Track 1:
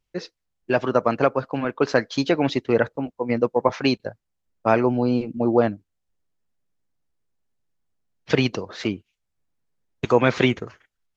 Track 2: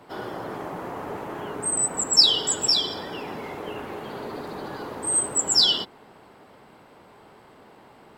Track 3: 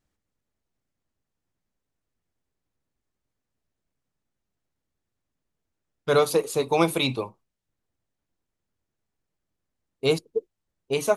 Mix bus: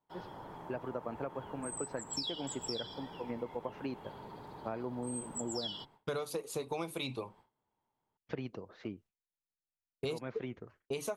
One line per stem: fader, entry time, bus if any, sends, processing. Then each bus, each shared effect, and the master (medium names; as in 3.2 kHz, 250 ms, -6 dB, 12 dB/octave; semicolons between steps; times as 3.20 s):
-15.0 dB, 0.00 s, no send, low-pass 1.2 kHz 6 dB/octave
-17.5 dB, 0.00 s, no send, octave divider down 1 oct, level +2 dB; small resonant body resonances 910/3300 Hz, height 11 dB, ringing for 25 ms
-4.0 dB, 0.00 s, no send, none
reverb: none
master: gate with hold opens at -52 dBFS; compression 10:1, threshold -34 dBFS, peak gain reduction 15.5 dB